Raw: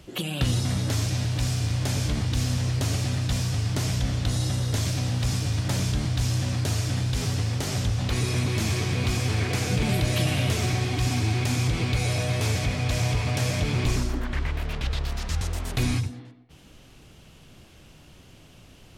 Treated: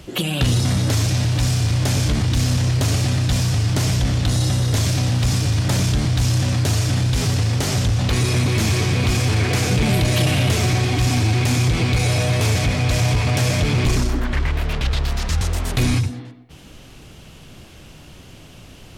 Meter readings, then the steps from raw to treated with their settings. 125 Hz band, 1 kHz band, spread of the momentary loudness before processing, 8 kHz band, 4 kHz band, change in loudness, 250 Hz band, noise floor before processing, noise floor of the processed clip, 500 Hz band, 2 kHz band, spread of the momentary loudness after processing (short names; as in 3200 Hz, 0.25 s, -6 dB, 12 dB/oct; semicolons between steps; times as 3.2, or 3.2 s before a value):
+7.0 dB, +7.0 dB, 5 LU, +7.0 dB, +7.0 dB, +7.0 dB, +7.0 dB, -51 dBFS, -43 dBFS, +7.0 dB, +7.0 dB, 4 LU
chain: soft clip -19 dBFS, distortion -19 dB; gain +8.5 dB